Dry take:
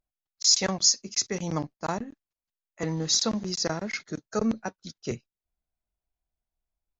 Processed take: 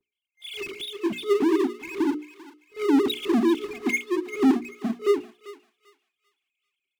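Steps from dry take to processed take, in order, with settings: formants replaced by sine waves; resonant high shelf 1.8 kHz -11 dB, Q 3; level rider gain up to 13.5 dB; expander -57 dBFS; FFT band-reject 420–2100 Hz; power-law waveshaper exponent 0.5; hum notches 60/120/180/240/300/360/420 Hz; on a send: thinning echo 392 ms, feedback 31%, high-pass 1.1 kHz, level -12 dB; on the sum: trim -7 dB

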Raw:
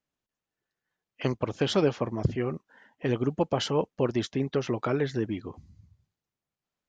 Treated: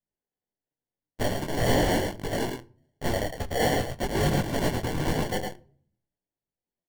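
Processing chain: steep high-pass 2.6 kHz 96 dB/octave; in parallel at -6 dB: fuzz box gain 57 dB, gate -59 dBFS; on the sum: sample-and-hold 35×; on a send: delay 108 ms -5 dB; on the sum: simulated room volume 480 m³, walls furnished, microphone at 0.34 m; detune thickener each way 16 cents

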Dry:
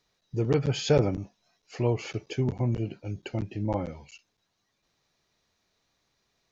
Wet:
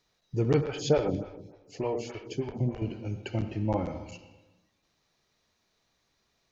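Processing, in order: reverberation RT60 1.1 s, pre-delay 51 ms, DRR 8 dB; 0.61–2.82 s: lamp-driven phase shifter 3.4 Hz

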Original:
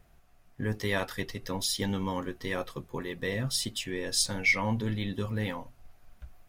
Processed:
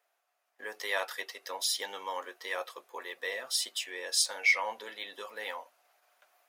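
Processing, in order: gate -55 dBFS, range -8 dB; high-pass 540 Hz 24 dB/octave

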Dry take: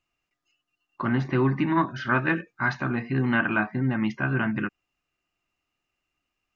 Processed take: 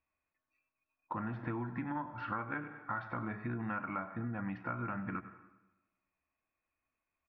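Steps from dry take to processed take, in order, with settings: peaking EQ 80 Hz +11 dB 0.38 oct; delay 86 ms -17 dB; plate-style reverb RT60 0.89 s, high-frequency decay 0.85×, pre-delay 110 ms, DRR 18.5 dB; tape speed -10%; low-pass 1.9 kHz 12 dB/octave; bass shelf 340 Hz -7.5 dB; compression 10:1, threshold -31 dBFS, peak gain reduction 12.5 dB; trim -3.5 dB

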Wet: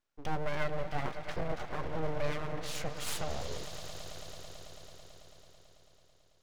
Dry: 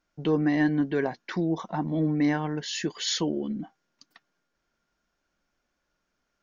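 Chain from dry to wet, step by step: echo with a slow build-up 110 ms, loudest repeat 5, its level -15 dB; full-wave rectifier; trim -6.5 dB

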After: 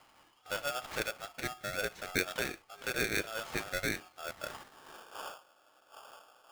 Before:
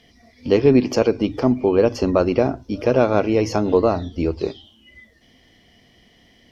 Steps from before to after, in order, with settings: wind noise 110 Hz -24 dBFS; 2.17–2.73 s: dynamic bell 2.3 kHz, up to +6 dB, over -38 dBFS, Q 0.88; band-pass sweep 1.4 kHz -> 440 Hz, 4.03–5.34 s; polarity switched at an audio rate 1 kHz; trim -4.5 dB

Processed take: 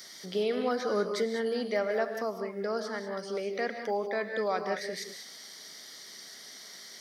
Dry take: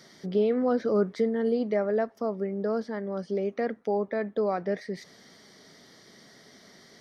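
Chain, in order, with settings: tilt EQ +4 dB/octave; gated-style reverb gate 220 ms rising, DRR 5.5 dB

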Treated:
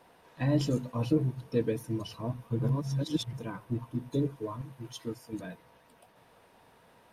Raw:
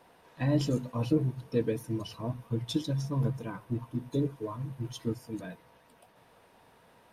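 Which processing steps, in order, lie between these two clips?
2.59–3.33 s: reverse; 4.61–5.33 s: bass shelf 260 Hz -10 dB

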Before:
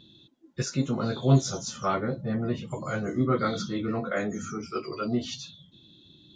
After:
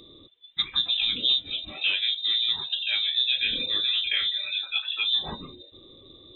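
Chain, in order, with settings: compression 6:1, threshold -26 dBFS, peak gain reduction 12 dB; frequency inversion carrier 3.8 kHz; trim +5 dB

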